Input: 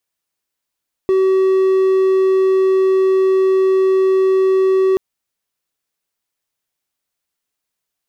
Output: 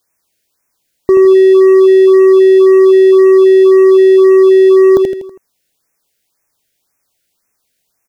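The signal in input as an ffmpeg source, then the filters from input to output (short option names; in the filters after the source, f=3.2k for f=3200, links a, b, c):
-f lavfi -i "aevalsrc='0.376*(1-4*abs(mod(380*t+0.25,1)-0.5))':d=3.88:s=44100"
-filter_complex "[0:a]asplit=2[a][b];[b]aecho=0:1:81|162|243|324|405:0.447|0.201|0.0905|0.0407|0.0183[c];[a][c]amix=inputs=2:normalize=0,alimiter=level_in=12.5dB:limit=-1dB:release=50:level=0:latency=1,afftfilt=real='re*(1-between(b*sr/1024,950*pow(3900/950,0.5+0.5*sin(2*PI*1.9*pts/sr))/1.41,950*pow(3900/950,0.5+0.5*sin(2*PI*1.9*pts/sr))*1.41))':imag='im*(1-between(b*sr/1024,950*pow(3900/950,0.5+0.5*sin(2*PI*1.9*pts/sr))/1.41,950*pow(3900/950,0.5+0.5*sin(2*PI*1.9*pts/sr))*1.41))':win_size=1024:overlap=0.75"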